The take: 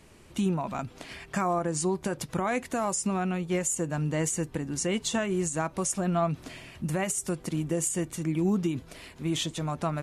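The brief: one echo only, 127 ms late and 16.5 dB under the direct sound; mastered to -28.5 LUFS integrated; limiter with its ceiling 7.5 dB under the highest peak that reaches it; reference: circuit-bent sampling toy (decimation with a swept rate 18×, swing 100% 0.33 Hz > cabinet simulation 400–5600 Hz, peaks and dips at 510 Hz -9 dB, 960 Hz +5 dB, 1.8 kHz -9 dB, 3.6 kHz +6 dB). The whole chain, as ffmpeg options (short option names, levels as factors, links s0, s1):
-af "alimiter=level_in=1.12:limit=0.0631:level=0:latency=1,volume=0.891,aecho=1:1:127:0.15,acrusher=samples=18:mix=1:aa=0.000001:lfo=1:lforange=18:lforate=0.33,highpass=400,equalizer=f=510:t=q:w=4:g=-9,equalizer=f=960:t=q:w=4:g=5,equalizer=f=1800:t=q:w=4:g=-9,equalizer=f=3600:t=q:w=4:g=6,lowpass=f=5600:w=0.5412,lowpass=f=5600:w=1.3066,volume=3.16"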